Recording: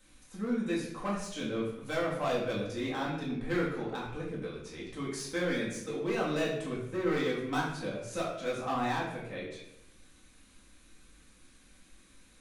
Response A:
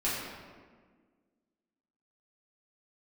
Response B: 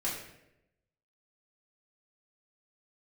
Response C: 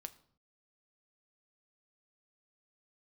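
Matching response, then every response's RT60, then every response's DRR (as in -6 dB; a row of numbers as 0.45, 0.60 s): B; 1.6, 0.85, 0.60 s; -9.5, -7.0, 8.5 dB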